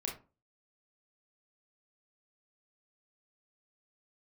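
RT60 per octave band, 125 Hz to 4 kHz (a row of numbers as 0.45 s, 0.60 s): 0.40 s, 0.40 s, 0.35 s, 0.30 s, 0.25 s, 0.20 s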